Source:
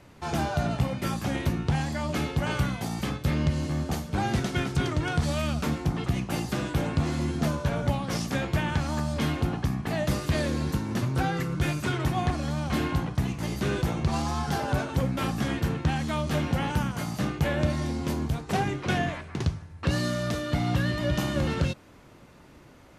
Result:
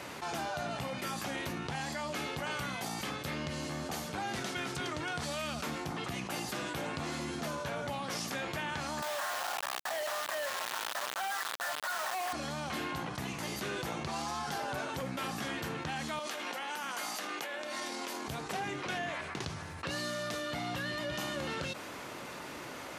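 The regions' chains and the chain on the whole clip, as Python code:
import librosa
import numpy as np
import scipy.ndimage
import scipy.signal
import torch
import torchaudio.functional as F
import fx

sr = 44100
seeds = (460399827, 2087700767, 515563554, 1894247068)

y = fx.chain(x, sr, fx.brickwall_bandpass(low_hz=540.0, high_hz=2000.0),
    fx.quant_companded(bits=2), at=(9.02, 12.33))
y = fx.chain(y, sr, fx.highpass(hz=230.0, slope=24),
    fx.over_compress(threshold_db=-35.0, ratio=-1.0),
    fx.low_shelf(hz=400.0, db=-10.0), at=(16.19, 18.28))
y = fx.highpass(y, sr, hz=660.0, slope=6)
y = fx.env_flatten(y, sr, amount_pct=70)
y = y * librosa.db_to_amplitude(-8.0)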